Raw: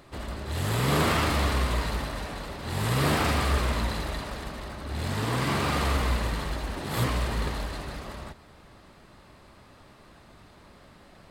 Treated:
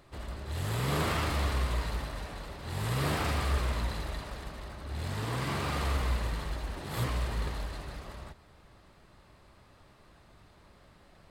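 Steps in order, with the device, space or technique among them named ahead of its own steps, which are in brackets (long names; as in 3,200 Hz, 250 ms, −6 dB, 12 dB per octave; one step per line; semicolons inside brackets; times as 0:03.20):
low shelf boost with a cut just above (low-shelf EQ 110 Hz +4.5 dB; parametric band 240 Hz −3.5 dB 0.61 octaves)
level −6.5 dB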